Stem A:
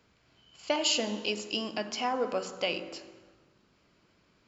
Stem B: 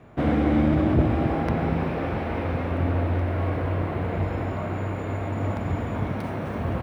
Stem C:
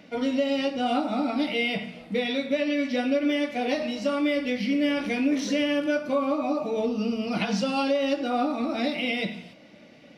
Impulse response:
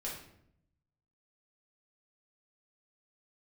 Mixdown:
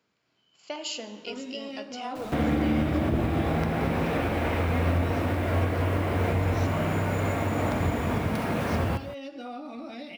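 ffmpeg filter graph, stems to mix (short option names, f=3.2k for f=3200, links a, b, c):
-filter_complex "[0:a]highpass=150,volume=-7dB[a];[1:a]highshelf=f=2.1k:g=8.5,acrusher=bits=7:mix=0:aa=0.000001,adelay=2150,volume=-0.5dB,asplit=3[b][c][d];[c]volume=-4.5dB[e];[d]volume=-11.5dB[f];[2:a]alimiter=level_in=0.5dB:limit=-24dB:level=0:latency=1:release=240,volume=-0.5dB,adelay=1150,volume=-6dB[g];[3:a]atrim=start_sample=2205[h];[e][h]afir=irnorm=-1:irlink=0[i];[f]aecho=0:1:176:1[j];[a][b][g][i][j]amix=inputs=5:normalize=0,alimiter=limit=-16dB:level=0:latency=1:release=461"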